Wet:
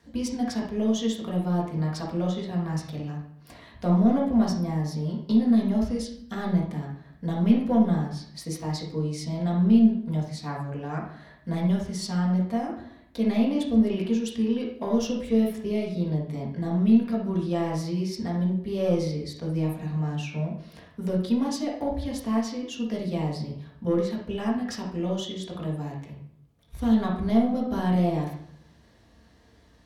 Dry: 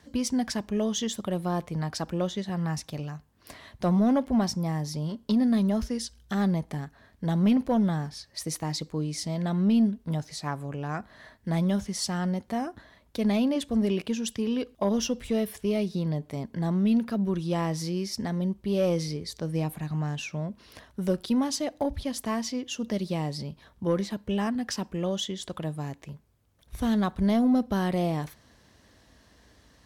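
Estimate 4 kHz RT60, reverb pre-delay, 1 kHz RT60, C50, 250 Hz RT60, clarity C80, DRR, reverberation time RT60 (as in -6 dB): 0.55 s, 4 ms, 0.65 s, 3.0 dB, 0.85 s, 8.5 dB, -3.5 dB, 0.70 s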